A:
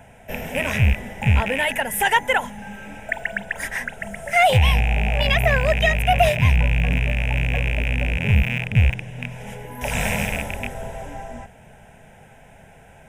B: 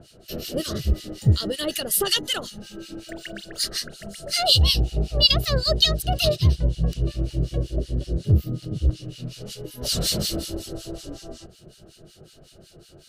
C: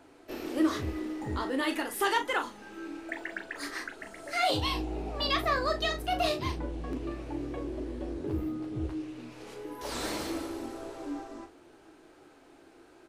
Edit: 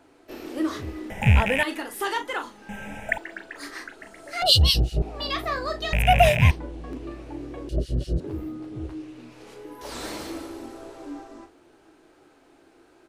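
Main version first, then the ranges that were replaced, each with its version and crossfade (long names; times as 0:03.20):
C
0:01.10–0:01.63: punch in from A
0:02.69–0:03.18: punch in from A
0:04.42–0:05.02: punch in from B
0:05.93–0:06.51: punch in from A
0:07.69–0:08.20: punch in from B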